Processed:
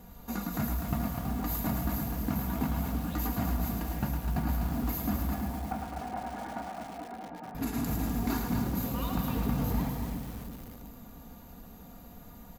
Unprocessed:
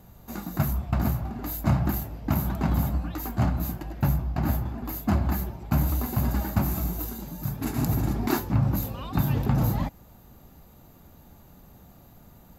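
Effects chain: comb 4.2 ms, depth 55%; compressor 4:1, threshold -30 dBFS, peak gain reduction 11 dB; 5.34–7.55 speaker cabinet 390–2100 Hz, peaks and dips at 410 Hz -4 dB, 750 Hz +9 dB, 1100 Hz -5 dB; split-band echo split 500 Hz, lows 0.337 s, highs 0.108 s, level -5.5 dB; lo-fi delay 0.25 s, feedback 35%, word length 7-bit, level -6 dB

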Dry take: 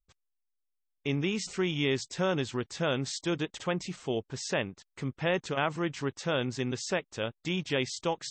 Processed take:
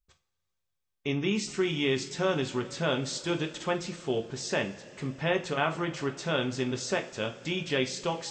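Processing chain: two-slope reverb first 0.31 s, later 4.5 s, from -22 dB, DRR 4 dB

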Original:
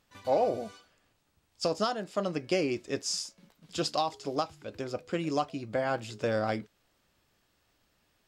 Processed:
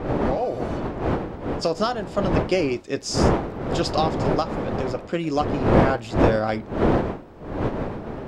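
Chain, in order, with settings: opening faded in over 0.74 s; wind noise 510 Hz -31 dBFS; high shelf 6000 Hz -7 dB; gain +6.5 dB

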